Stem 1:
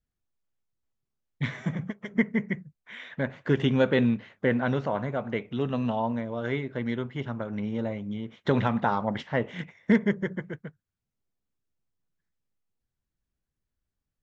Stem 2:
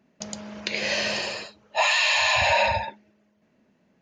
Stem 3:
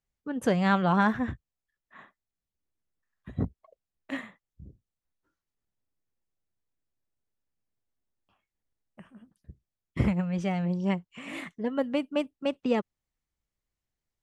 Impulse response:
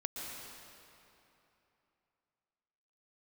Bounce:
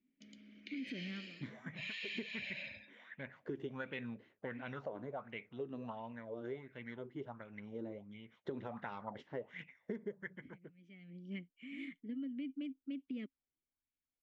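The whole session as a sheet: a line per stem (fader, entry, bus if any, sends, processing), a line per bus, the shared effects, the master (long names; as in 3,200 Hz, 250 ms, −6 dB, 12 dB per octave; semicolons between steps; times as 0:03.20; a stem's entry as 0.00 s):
−20.0 dB, 0.00 s, no bus, no send, auto-filter bell 1.4 Hz 310–2,600 Hz +17 dB
−7.5 dB, 0.00 s, bus A, no send, no processing
−1.0 dB, 0.45 s, bus A, no send, automatic ducking −20 dB, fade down 0.30 s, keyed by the first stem
bus A: 0.0 dB, formant filter i; brickwall limiter −34 dBFS, peak gain reduction 10 dB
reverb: not used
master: downward compressor 12 to 1, threshold −38 dBFS, peak gain reduction 10.5 dB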